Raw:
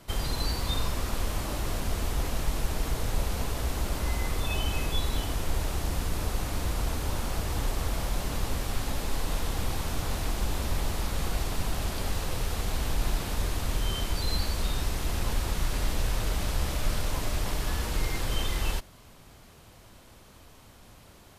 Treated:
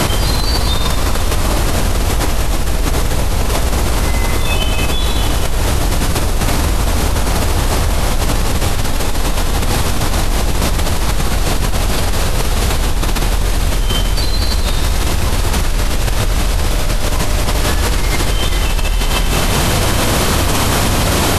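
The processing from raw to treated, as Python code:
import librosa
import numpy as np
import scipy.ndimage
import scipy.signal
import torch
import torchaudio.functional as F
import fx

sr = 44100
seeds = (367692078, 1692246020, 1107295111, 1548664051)

y = fx.brickwall_lowpass(x, sr, high_hz=13000.0)
y = fx.rev_plate(y, sr, seeds[0], rt60_s=2.2, hf_ratio=1.0, predelay_ms=0, drr_db=5.0)
y = fx.env_flatten(y, sr, amount_pct=100)
y = y * librosa.db_to_amplitude(7.0)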